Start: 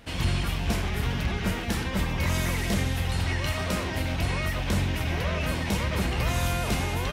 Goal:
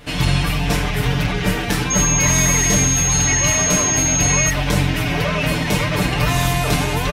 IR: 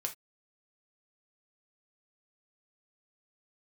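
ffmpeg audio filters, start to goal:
-filter_complex "[0:a]asettb=1/sr,asplit=3[a][b][c];[a]atrim=end=1.904[d];[b]atrim=start=1.9:end=4.5,asetpts=PTS-STARTPTS,afade=t=in:d=0.004:c=qsin,afade=t=out:st=2.596:d=0.004:c=qsin,aeval=exprs='val(0)+0.0355*sin(2*PI*6500*n/s)':c=same[e];[c]atrim=start=4.496[f];[d][e]acrossfade=d=0.004:c1=hsin:c2=qsin[g];[g][f]acrossfade=d=0.004:c1=qsin:c2=hsin,aecho=1:1:6.8:0.99,volume=7dB"

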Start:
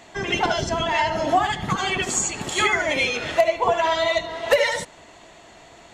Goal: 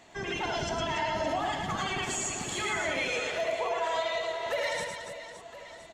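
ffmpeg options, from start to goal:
-filter_complex "[0:a]asettb=1/sr,asplit=3[a][b][c];[a]atrim=end=3.124[d];[b]atrim=start=3.12:end=4.46,asetpts=PTS-STARTPTS,afade=t=in:d=0.004:c=qsin,afade=t=out:st=1.336:d=0.004:c=qsin,lowshelf=f=350:t=q:w=3:g=-7.5[e];[c]atrim=start=4.456[f];[d][e]acrossfade=d=0.004:c1=hsin:c2=qsin[g];[g][f]acrossfade=d=0.004:c1=qsin:c2=hsin,alimiter=limit=-16dB:level=0:latency=1:release=25,aecho=1:1:110|286|567.6|1018|1739:0.631|0.398|0.251|0.158|0.1,volume=-8.5dB"

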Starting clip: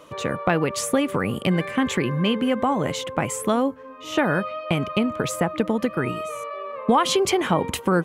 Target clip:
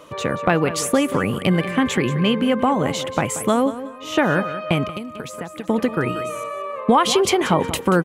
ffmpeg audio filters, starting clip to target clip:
-filter_complex "[0:a]aecho=1:1:183|366|549:0.211|0.0507|0.0122,asettb=1/sr,asplit=3[a][b][c];[a]atrim=end=4.894[d];[b]atrim=start=4.89:end=5.69,asetpts=PTS-STARTPTS,afade=t=in:d=0.004:c=qsin,afade=t=out:st=0.796:d=0.004:c=qsin,acrossover=split=1400|5700[e][f][g];[e]acompressor=threshold=-34dB:ratio=4[h];[f]acompressor=threshold=-43dB:ratio=4[i];[g]acompressor=threshold=-47dB:ratio=4[j];[h][i][j]amix=inputs=3:normalize=0[k];[c]atrim=start=5.686[l];[d][k]acrossfade=d=0.004:c1=hsin:c2=qsin[m];[m][l]acrossfade=d=0.004:c1=qsin:c2=hsin,volume=3dB"

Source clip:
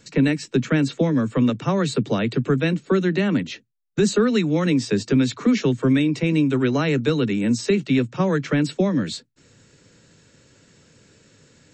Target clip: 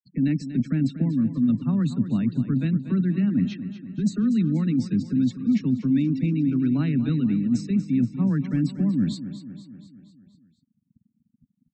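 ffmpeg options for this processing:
-af "aeval=exprs='val(0)*gte(abs(val(0)),0.00422)':c=same,lowshelf=f=330:t=q:w=3:g=10.5,areverse,acompressor=threshold=-12dB:ratio=6,areverse,afftfilt=real='re*gte(hypot(re,im),0.02)':imag='im*gte(hypot(re,im),0.02)':win_size=1024:overlap=0.75,aecho=1:1:239|478|717|956|1195|1434:0.251|0.143|0.0816|0.0465|0.0265|0.0151,volume=-8dB"

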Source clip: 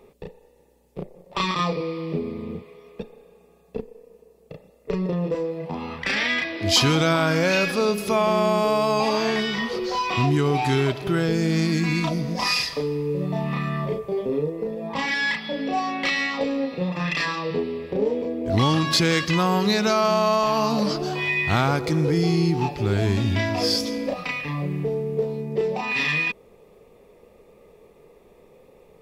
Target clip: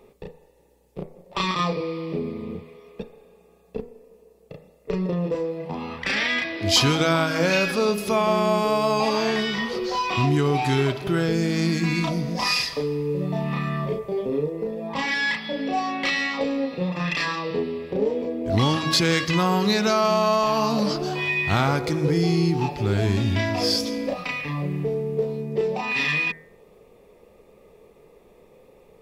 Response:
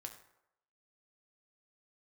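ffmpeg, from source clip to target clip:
-af "bandreject=f=79.64:t=h:w=4,bandreject=f=159.28:t=h:w=4,bandreject=f=238.92:t=h:w=4,bandreject=f=318.56:t=h:w=4,bandreject=f=398.2:t=h:w=4,bandreject=f=477.84:t=h:w=4,bandreject=f=557.48:t=h:w=4,bandreject=f=637.12:t=h:w=4,bandreject=f=716.76:t=h:w=4,bandreject=f=796.4:t=h:w=4,bandreject=f=876.04:t=h:w=4,bandreject=f=955.68:t=h:w=4,bandreject=f=1.03532k:t=h:w=4,bandreject=f=1.11496k:t=h:w=4,bandreject=f=1.1946k:t=h:w=4,bandreject=f=1.27424k:t=h:w=4,bandreject=f=1.35388k:t=h:w=4,bandreject=f=1.43352k:t=h:w=4,bandreject=f=1.51316k:t=h:w=4,bandreject=f=1.5928k:t=h:w=4,bandreject=f=1.67244k:t=h:w=4,bandreject=f=1.75208k:t=h:w=4,bandreject=f=1.83172k:t=h:w=4,bandreject=f=1.91136k:t=h:w=4,bandreject=f=1.991k:t=h:w=4,bandreject=f=2.07064k:t=h:w=4,bandreject=f=2.15028k:t=h:w=4,bandreject=f=2.22992k:t=h:w=4,bandreject=f=2.30956k:t=h:w=4,bandreject=f=2.3892k:t=h:w=4"

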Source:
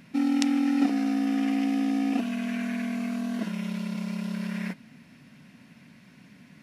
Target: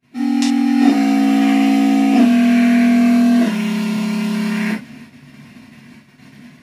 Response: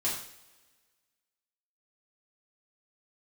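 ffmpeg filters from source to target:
-filter_complex "[0:a]agate=range=-26dB:threshold=-51dB:ratio=16:detection=peak,dynaudnorm=f=180:g=3:m=9dB[a];[1:a]atrim=start_sample=2205,atrim=end_sample=3528[b];[a][b]afir=irnorm=-1:irlink=0"

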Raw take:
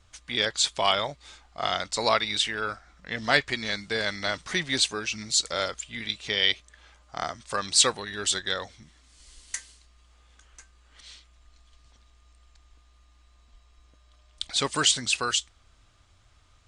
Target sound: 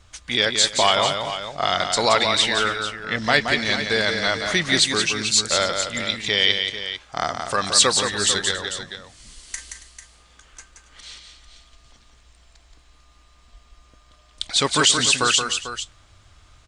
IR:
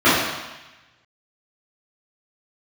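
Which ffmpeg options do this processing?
-filter_complex "[0:a]asettb=1/sr,asplit=3[a][b][c];[a]atrim=end=8.514[d];[b]atrim=start=8.51:end=9.58,asetpts=PTS-STARTPTS,afade=t=in:d=0.004:c=qsin,afade=t=out:st=1.066:d=0.004:c=qsin,acrossover=split=170[e][f];[f]acompressor=threshold=-40dB:ratio=2[g];[e][g]amix=inputs=2:normalize=0[h];[c]atrim=start=9.576[i];[d][h]acrossfade=d=0.004:c1=hsin:c2=qsin[j];[j][i]acrossfade=d=0.004:c1=qsin:c2=hsin,asplit=2[k][l];[l]alimiter=limit=-15.5dB:level=0:latency=1,volume=2.5dB[m];[k][m]amix=inputs=2:normalize=0,aecho=1:1:175|278|445:0.501|0.119|0.282"

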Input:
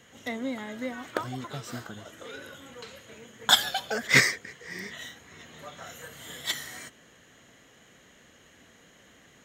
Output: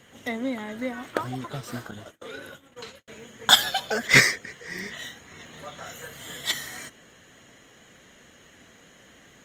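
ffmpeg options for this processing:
-filter_complex "[0:a]asettb=1/sr,asplit=3[a][b][c];[a]atrim=end=1.914[d];[b]atrim=start=1.91:end=3.08,asetpts=PTS-STARTPTS,afade=t=in:d=0.004:c=qsin,afade=t=out:st=1.166:d=0.004:c=qsin,agate=range=-55dB:threshold=-45dB:ratio=16:detection=peak[e];[c]atrim=start=3.076[f];[d][e]acrossfade=d=0.004:c1=hsin:c2=qsin[g];[g][f]acrossfade=d=0.004:c1=qsin:c2=hsin,volume=3.5dB" -ar 48000 -c:a libopus -b:a 32k

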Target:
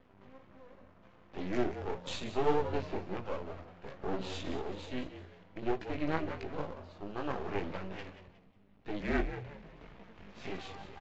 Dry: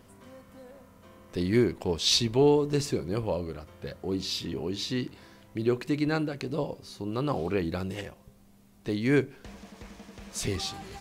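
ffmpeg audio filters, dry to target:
-filter_complex "[0:a]asettb=1/sr,asplit=3[a][b][c];[a]atrim=end=3.964[d];[b]atrim=start=3.96:end=4.62,asetpts=PTS-STARTPTS,afade=t=in:d=0.004:c=qsin,afade=t=out:st=0.656:d=0.004:c=qsin,aeval=exprs='0.112*(cos(1*acos(clip(val(0)/0.112,-1,1)))-cos(1*PI/2))+0.0316*(cos(2*acos(clip(val(0)/0.112,-1,1)))-cos(2*PI/2))+0.0282*(cos(5*acos(clip(val(0)/0.112,-1,1)))-cos(5*PI/2))':c=same[e];[c]atrim=start=4.616[f];[d][e]acrossfade=d=0.004:c1=hsin:c2=qsin[g];[g][f]acrossfade=d=0.004:c1=qsin:c2=hsin,acrossover=split=150[h][i];[h]acompressor=threshold=-48dB:ratio=6[j];[i]lowpass=f=3k:w=0.5412,lowpass=f=3k:w=1.3066[k];[j][k]amix=inputs=2:normalize=0,flanger=delay=15.5:depth=5:speed=1.9,asettb=1/sr,asplit=3[l][m][n];[l]atrim=end=1.524[o];[m]atrim=start=1.52:end=2.08,asetpts=PTS-STARTPTS,afade=t=in:d=0.004:c=qsin,afade=t=out:st=0.556:d=0.004:c=qsin,adynamicsmooth=sensitivity=5:basefreq=530[p];[n]atrim=start=2.076[q];[o][p]acrossfade=d=0.004:c1=hsin:c2=qsin[r];[r][q]acrossfade=d=0.004:c1=qsin:c2=hsin,aeval=exprs='max(val(0),0)':c=same,asettb=1/sr,asplit=3[s][t][u];[s]atrim=end=8.994[v];[t]atrim=start=8.99:end=9.94,asetpts=PTS-STARTPTS,afade=t=in:d=0.004:c=qsin,afade=t=out:st=0.946:d=0.004:c=qsin,afreqshift=-37[w];[u]atrim=start=9.936[x];[v][w]acrossfade=d=0.004:c1=hsin:c2=qsin[y];[y][x]acrossfade=d=0.004:c1=qsin:c2=hsin,asplit=4[z][aa][ab][ac];[aa]adelay=181,afreqshift=88,volume=-12dB[ad];[ab]adelay=362,afreqshift=176,volume=-22.5dB[ae];[ac]adelay=543,afreqshift=264,volume=-32.9dB[af];[z][ad][ae][af]amix=inputs=4:normalize=0" -ar 16000 -c:a aac -b:a 32k

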